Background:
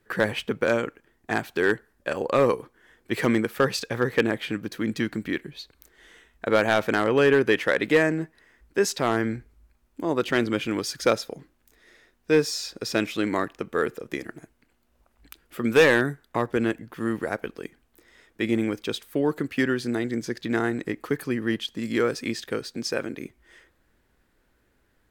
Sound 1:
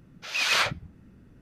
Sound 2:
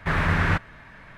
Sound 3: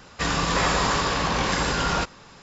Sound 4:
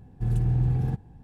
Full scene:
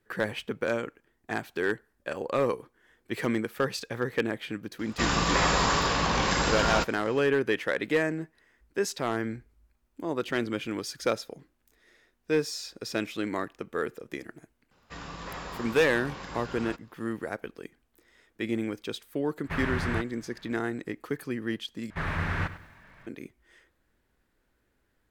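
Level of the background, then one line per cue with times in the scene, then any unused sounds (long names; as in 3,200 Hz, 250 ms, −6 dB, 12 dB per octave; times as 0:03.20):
background −6 dB
0:04.79: mix in 3 −2 dB
0:14.71: mix in 3 −16.5 dB + low-pass filter 3,800 Hz 6 dB per octave
0:19.44: mix in 2 −9 dB
0:21.90: overwrite with 2 −8 dB + feedback echo at a low word length 100 ms, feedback 35%, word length 8 bits, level −14 dB
not used: 1, 4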